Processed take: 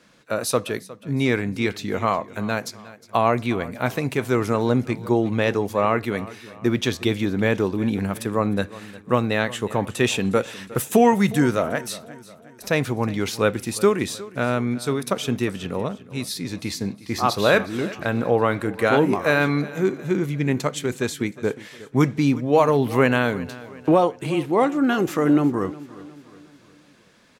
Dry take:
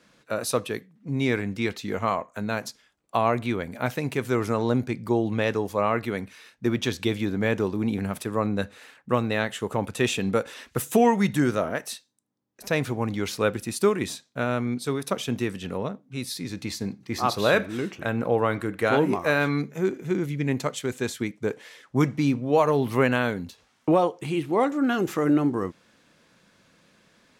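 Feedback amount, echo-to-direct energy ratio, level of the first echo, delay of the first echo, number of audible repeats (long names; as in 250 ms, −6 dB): 46%, −17.5 dB, −18.5 dB, 360 ms, 3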